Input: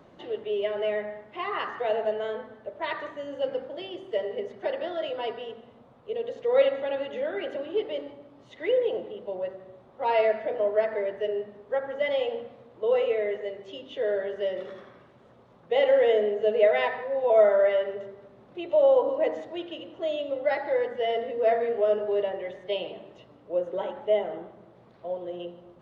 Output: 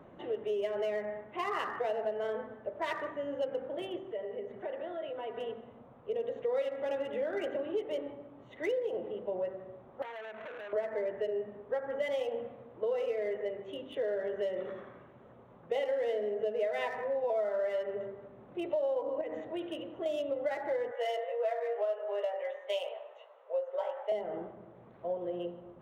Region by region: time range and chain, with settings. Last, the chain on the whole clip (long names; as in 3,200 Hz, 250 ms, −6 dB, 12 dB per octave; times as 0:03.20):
0:03.98–0:05.37: high-frequency loss of the air 51 metres + downward compressor 2 to 1, threshold −41 dBFS
0:10.02–0:10.73: parametric band 1,200 Hz −4 dB 2.5 octaves + downward compressor 16 to 1, threshold −34 dBFS + saturating transformer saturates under 2,900 Hz
0:19.21–0:20.06: dynamic equaliser 740 Hz, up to −6 dB, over −36 dBFS, Q 0.9 + downward compressor, threshold −31 dBFS
0:20.91–0:24.12: Butterworth high-pass 500 Hz 48 dB per octave + double-tracking delay 17 ms −5 dB
whole clip: adaptive Wiener filter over 9 samples; downward compressor 6 to 1, threshold −30 dBFS